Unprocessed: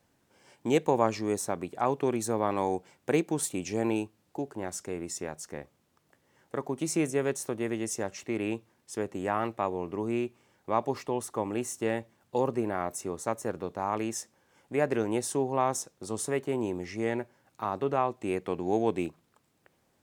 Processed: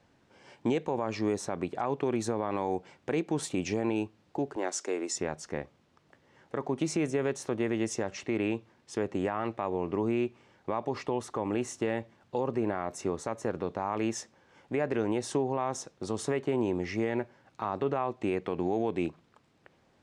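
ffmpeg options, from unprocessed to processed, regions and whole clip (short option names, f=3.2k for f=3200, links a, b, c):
-filter_complex "[0:a]asettb=1/sr,asplit=3[a][b][c];[a]atrim=end=4.564[d];[b]atrim=start=4.56:end=5.16,asetpts=PTS-STARTPTS,afade=t=in:d=0.004:c=qsin,afade=t=out:st=0.596:d=0.004:c=qsin,highpass=f=290:w=0.5412,highpass=f=290:w=1.3066,equalizer=f=6.9k:t=o:w=1.2:g=7[e];[c]atrim=start=5.156[f];[d][e]acrossfade=d=0.004:c1=hsin:c2=qsin[g];[g][f]acrossfade=d=0.004:c1=qsin:c2=hsin,lowpass=4.8k,acompressor=threshold=-30dB:ratio=2,alimiter=limit=-24dB:level=0:latency=1:release=41,volume=5dB"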